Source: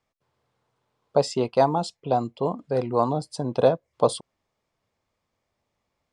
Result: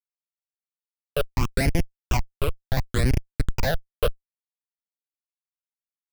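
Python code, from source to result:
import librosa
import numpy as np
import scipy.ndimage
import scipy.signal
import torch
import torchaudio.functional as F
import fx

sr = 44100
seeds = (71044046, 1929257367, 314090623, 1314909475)

y = fx.schmitt(x, sr, flips_db=-19.5)
y = fx.phaser_stages(y, sr, stages=8, low_hz=230.0, high_hz=1200.0, hz=0.7, feedback_pct=35)
y = F.gain(torch.from_numpy(y), 8.5).numpy()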